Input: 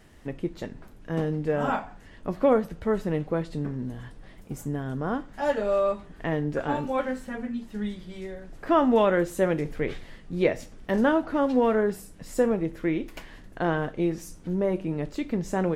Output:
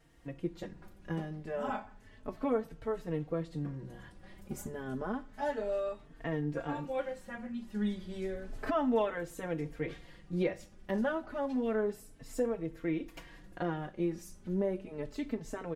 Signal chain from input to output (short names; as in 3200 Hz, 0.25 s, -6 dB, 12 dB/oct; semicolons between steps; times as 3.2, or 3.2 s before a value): recorder AGC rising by 6.2 dB/s; endless flanger 3.9 ms +0.31 Hz; gain -7.5 dB